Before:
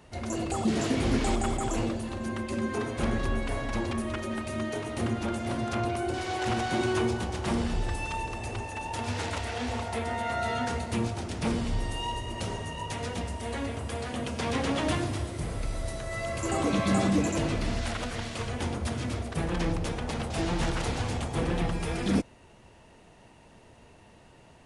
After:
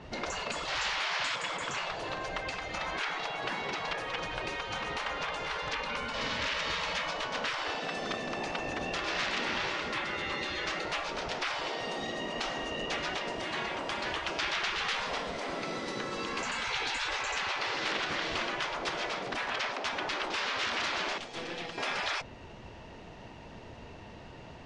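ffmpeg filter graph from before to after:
-filter_complex "[0:a]asettb=1/sr,asplit=3[s0][s1][s2];[s0]atrim=end=21.184[s3];[s1]atrim=start=21.18:end=21.78,asetpts=PTS-STARTPTS,afade=t=in:d=0.004:c=qsin,afade=t=out:st=0.596:d=0.004:c=qsin,highpass=610,equalizer=f=950:t=o:w=2.2:g=-11.5,aeval=exprs='(tanh(50.1*val(0)+0.55)-tanh(0.55))/50.1':c=same[s4];[s2]atrim=start=21.776[s5];[s3][s4]acrossfade=d=0.004:c1=hsin:c2=qsin[s6];[s6][s5]acrossfade=d=0.004:c1=qsin:c2=hsin,lowpass=f=5700:w=0.5412,lowpass=f=5700:w=1.3066,afftfilt=real='re*lt(hypot(re,im),0.0501)':imag='im*lt(hypot(re,im),0.0501)':win_size=1024:overlap=0.75,adynamicequalizer=threshold=0.00316:dfrequency=4200:dqfactor=0.7:tfrequency=4200:tqfactor=0.7:attack=5:release=100:ratio=0.375:range=2:mode=cutabove:tftype=highshelf,volume=2.24"

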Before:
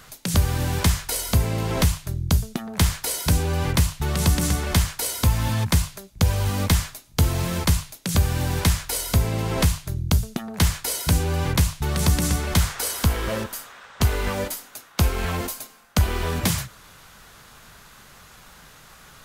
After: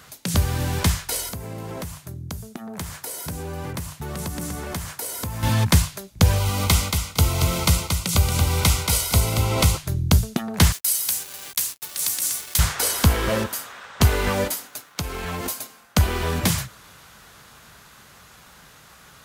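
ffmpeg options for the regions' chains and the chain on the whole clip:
-filter_complex "[0:a]asettb=1/sr,asplit=3[s0][s1][s2];[s0]atrim=end=1.294[s3];[s1]atrim=start=1.29:end=5.43,asetpts=PTS-STARTPTS,afade=t=in:d=0.004:c=qsin,afade=t=out:st=4.136:d=0.004:c=qsin,highpass=f=130:p=1,equalizer=f=3600:t=o:w=2.1:g=-7,acompressor=threshold=0.0282:ratio=3:attack=3.2:release=140:knee=1:detection=peak[s4];[s2]atrim=start=5.426[s5];[s3][s4]acrossfade=d=0.004:c1=hsin:c2=qsin[s6];[s6][s5]acrossfade=d=0.004:c1=qsin:c2=hsin,asettb=1/sr,asplit=3[s7][s8][s9];[s7]atrim=end=6.384[s10];[s8]atrim=start=6.38:end=9.77,asetpts=PTS-STARTPTS,afade=t=in:d=0.004:c=qsin,afade=t=out:st=3.386:d=0.004:c=qsin,asuperstop=centerf=1700:order=8:qfactor=4.9,equalizer=f=230:t=o:w=2.5:g=-6,aecho=1:1:229|458|687:0.531|0.111|0.0234,atrim=end_sample=149499[s11];[s9]atrim=start=9.766[s12];[s10][s11]acrossfade=d=0.004:c1=hsin:c2=qsin[s13];[s13][s12]acrossfade=d=0.004:c1=qsin:c2=hsin,asettb=1/sr,asplit=3[s14][s15][s16];[s14]atrim=end=10.724[s17];[s15]atrim=start=10.72:end=12.59,asetpts=PTS-STARTPTS,afade=t=in:d=0.004:c=qsin,afade=t=out:st=1.866:d=0.004:c=qsin,aderivative,acrusher=bits=5:mix=0:aa=0.5[s18];[s16]atrim=start=12.586[s19];[s17][s18]acrossfade=d=0.004:c1=hsin:c2=qsin[s20];[s20][s19]acrossfade=d=0.004:c1=qsin:c2=hsin,asettb=1/sr,asplit=3[s21][s22][s23];[s21]atrim=end=14.674[s24];[s22]atrim=start=14.67:end=15.46,asetpts=PTS-STARTPTS,afade=t=in:d=0.004:c=qsin,afade=t=out:st=0.786:d=0.004:c=qsin,aecho=1:1:6.8:0.32,atrim=end_sample=34839,acompressor=threshold=0.0398:ratio=4:attack=3.2:release=140:knee=1:detection=peak,aeval=exprs='sgn(val(0))*max(abs(val(0))-0.0015,0)':c=same[s25];[s23]atrim=start=15.456[s26];[s24][s25]acrossfade=d=0.004:c1=hsin:c2=qsin[s27];[s27][s26]acrossfade=d=0.004:c1=qsin:c2=hsin,highpass=55,dynaudnorm=f=350:g=21:m=1.88"

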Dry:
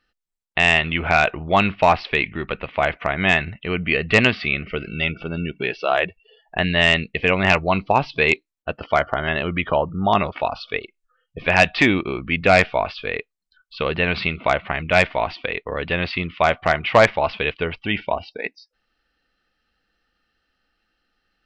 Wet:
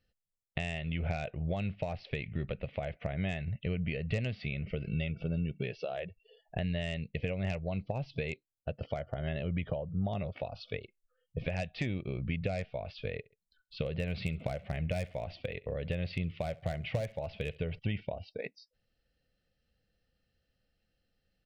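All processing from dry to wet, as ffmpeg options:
-filter_complex "[0:a]asettb=1/sr,asplit=3[s0][s1][s2];[s0]atrim=end=13.174[s3];[s1]atrim=start=13.17:end=17.79,asetpts=PTS-STARTPTS,afade=t=in:d=0.004:c=qsin,afade=t=out:st=4.616:d=0.004:c=qsin,volume=3.35,asoftclip=hard,volume=0.299,aecho=1:1:67|134:0.0631|0.0227,atrim=end_sample=203742[s4];[s2]atrim=start=17.786[s5];[s3][s4]acrossfade=d=0.004:c1=hsin:c2=qsin[s6];[s6][s5]acrossfade=d=0.004:c1=qsin:c2=hsin,firequalizer=gain_entry='entry(110,0);entry(320,-9);entry(540,3);entry(1000,-17);entry(2000,-7);entry(8000,-1)':delay=0.05:min_phase=1,acompressor=threshold=0.0282:ratio=6,equalizer=f=120:t=o:w=1.8:g=11,volume=0.562"

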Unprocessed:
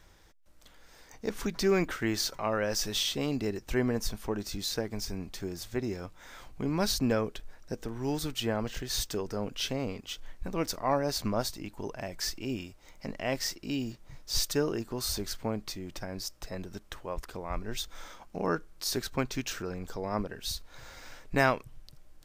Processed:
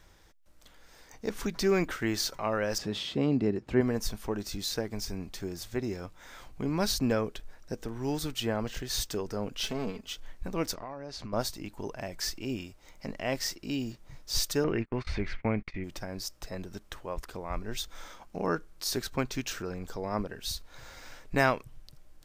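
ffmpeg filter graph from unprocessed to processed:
-filter_complex "[0:a]asettb=1/sr,asplit=3[s0][s1][s2];[s0]atrim=end=2.784[s3];[s1]atrim=start=2.78:end=3.81,asetpts=PTS-STARTPTS,afade=t=in:d=0.004:c=qsin,afade=t=out:st=1.026:d=0.004:c=qsin,highpass=180,aemphasis=mode=reproduction:type=riaa,bandreject=f=5900:w=10[s4];[s2]atrim=start=3.806[s5];[s3][s4]acrossfade=d=0.004:c1=hsin:c2=qsin[s6];[s6][s5]acrossfade=d=0.004:c1=qsin:c2=hsin,asettb=1/sr,asplit=3[s7][s8][s9];[s7]atrim=end=9.634[s10];[s8]atrim=start=9.63:end=10.08,asetpts=PTS-STARTPTS,afade=t=in:d=0.004:c=qsin,afade=t=out:st=0.446:d=0.004:c=qsin,aeval=exprs='if(lt(val(0),0),0.447*val(0),val(0))':c=same,aecho=1:1:4.6:0.65,atrim=end_sample=19845[s11];[s9]atrim=start=10.076[s12];[s10][s11]acrossfade=d=0.004:c1=hsin:c2=qsin[s13];[s13][s12]acrossfade=d=0.004:c1=qsin:c2=hsin,asettb=1/sr,asplit=3[s14][s15][s16];[s14]atrim=end=10.744[s17];[s15]atrim=start=10.74:end=11.33,asetpts=PTS-STARTPTS,afade=t=in:d=0.004:c=qsin,afade=t=out:st=0.586:d=0.004:c=qsin,lowpass=5200,acompressor=threshold=0.0158:ratio=10:attack=3.2:release=140:knee=1:detection=peak[s18];[s16]atrim=start=11.326[s19];[s17][s18]acrossfade=d=0.004:c1=hsin:c2=qsin[s20];[s20][s19]acrossfade=d=0.004:c1=qsin:c2=hsin,asettb=1/sr,asplit=3[s21][s22][s23];[s21]atrim=end=14.644[s24];[s22]atrim=start=14.64:end=15.84,asetpts=PTS-STARTPTS,afade=t=in:d=0.004:c=qsin,afade=t=out:st=1.196:d=0.004:c=qsin,lowpass=f=2200:t=q:w=5.5,lowshelf=f=240:g=7,agate=range=0.0224:threshold=0.0141:ratio=16:release=100:detection=peak[s25];[s23]atrim=start=15.836[s26];[s24][s25]acrossfade=d=0.004:c1=hsin:c2=qsin[s27];[s27][s26]acrossfade=d=0.004:c1=qsin:c2=hsin"

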